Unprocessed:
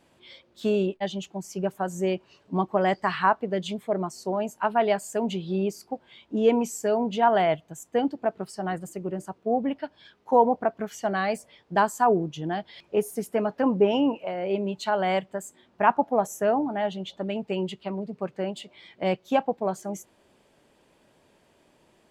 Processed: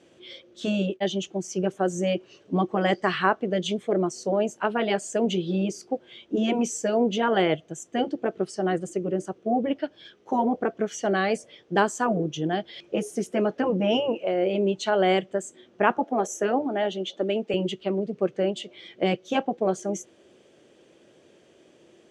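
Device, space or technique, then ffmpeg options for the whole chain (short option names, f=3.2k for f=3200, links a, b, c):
car door speaker: -filter_complex "[0:a]highpass=92,equalizer=f=350:t=q:w=4:g=9,equalizer=f=500:t=q:w=4:g=6,equalizer=f=940:t=q:w=4:g=-9,equalizer=f=3.2k:t=q:w=4:g=5,equalizer=f=6k:t=q:w=4:g=9,lowpass=f=9k:w=0.5412,lowpass=f=9k:w=1.3066,asettb=1/sr,asplit=3[a][b][c];[a]atrim=end=15.984[d];[b]atrim=start=15.98:end=17.54,asetpts=PTS-STARTPTS,afade=t=in:d=0.004:c=qsin,afade=t=out:st=1.556:d=0.004:c=qsin,highpass=f=210:w=0.5412,highpass=f=210:w=1.3066[e];[c]atrim=start=17.536[f];[d][e]acrossfade=d=0.004:c1=hsin:c2=qsin[g];[g][f]acrossfade=d=0.004:c1=qsin:c2=hsin,afftfilt=real='re*lt(hypot(re,im),0.794)':imag='im*lt(hypot(re,im),0.794)':win_size=1024:overlap=0.75,equalizer=f=5.2k:t=o:w=0.91:g=-3.5,volume=2.5dB"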